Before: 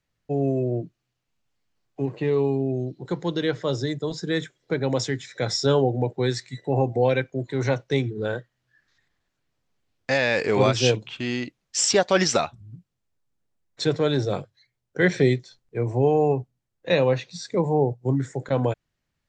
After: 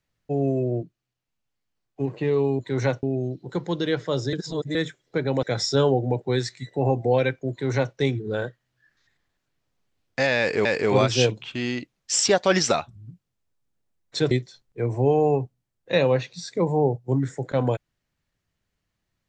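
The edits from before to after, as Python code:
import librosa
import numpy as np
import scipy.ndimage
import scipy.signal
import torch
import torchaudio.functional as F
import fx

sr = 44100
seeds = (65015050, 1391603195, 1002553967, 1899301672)

y = fx.edit(x, sr, fx.clip_gain(start_s=0.83, length_s=1.17, db=-5.5),
    fx.reverse_span(start_s=3.89, length_s=0.42),
    fx.cut(start_s=4.99, length_s=0.35),
    fx.duplicate(start_s=7.42, length_s=0.44, to_s=2.59),
    fx.repeat(start_s=10.3, length_s=0.26, count=2),
    fx.cut(start_s=13.96, length_s=1.32), tone=tone)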